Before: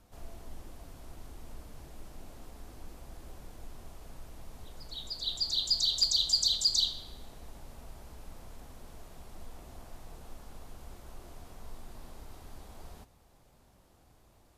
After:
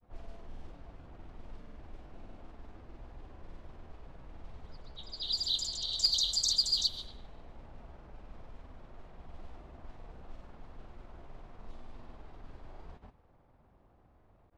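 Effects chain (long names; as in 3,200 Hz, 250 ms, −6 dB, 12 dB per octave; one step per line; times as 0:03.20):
granular cloud
low-pass that shuts in the quiet parts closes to 1,600 Hz, open at −29.5 dBFS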